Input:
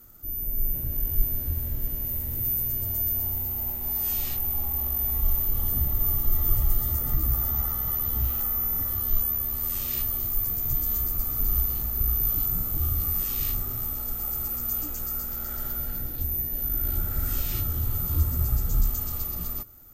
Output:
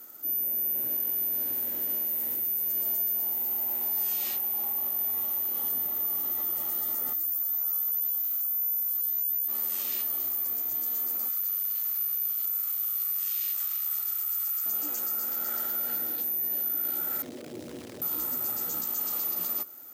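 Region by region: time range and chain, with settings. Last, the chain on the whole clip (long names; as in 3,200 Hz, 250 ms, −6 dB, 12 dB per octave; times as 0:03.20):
0:07.13–0:09.48: high-pass filter 160 Hz 24 dB per octave + bass and treble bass −4 dB, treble +13 dB
0:11.28–0:14.66: Bessel high-pass filter 1,600 Hz, order 6 + repeating echo 325 ms, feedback 27%, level −10 dB
0:17.22–0:18.02: Butterworth low-pass 610 Hz + floating-point word with a short mantissa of 4 bits + envelope flattener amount 50%
whole clip: Bessel high-pass filter 370 Hz, order 4; notch filter 1,200 Hz, Q 28; brickwall limiter −28 dBFS; level +5.5 dB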